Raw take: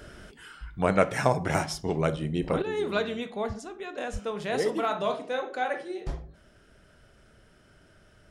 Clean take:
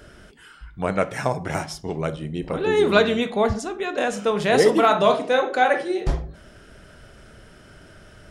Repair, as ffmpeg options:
-filter_complex "[0:a]asplit=3[s0][s1][s2];[s0]afade=t=out:st=4.12:d=0.02[s3];[s1]highpass=f=140:w=0.5412,highpass=f=140:w=1.3066,afade=t=in:st=4.12:d=0.02,afade=t=out:st=4.24:d=0.02[s4];[s2]afade=t=in:st=4.24:d=0.02[s5];[s3][s4][s5]amix=inputs=3:normalize=0,asetnsamples=n=441:p=0,asendcmd='2.62 volume volume 11dB',volume=1"

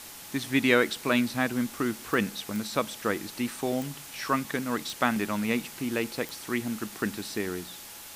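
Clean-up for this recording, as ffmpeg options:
-af "adeclick=t=4,bandreject=f=840:w=30,afwtdn=0.0071"

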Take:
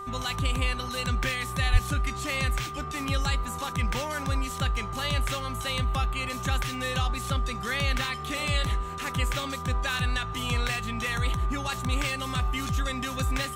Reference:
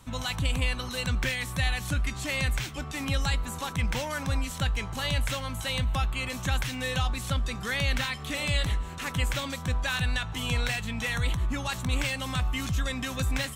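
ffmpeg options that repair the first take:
-filter_complex "[0:a]bandreject=f=390.4:t=h:w=4,bandreject=f=780.8:t=h:w=4,bandreject=f=1171.2:t=h:w=4,bandreject=f=1561.6:t=h:w=4,bandreject=f=1952:t=h:w=4,bandreject=f=1200:w=30,asplit=3[s0][s1][s2];[s0]afade=t=out:st=1.72:d=0.02[s3];[s1]highpass=f=140:w=0.5412,highpass=f=140:w=1.3066,afade=t=in:st=1.72:d=0.02,afade=t=out:st=1.84:d=0.02[s4];[s2]afade=t=in:st=1.84:d=0.02[s5];[s3][s4][s5]amix=inputs=3:normalize=0"

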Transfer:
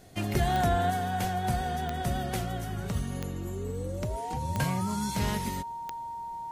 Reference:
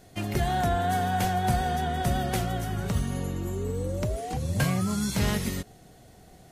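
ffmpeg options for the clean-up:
-af "adeclick=t=4,bandreject=f=930:w=30,asetnsamples=n=441:p=0,asendcmd='0.9 volume volume 4dB',volume=1"

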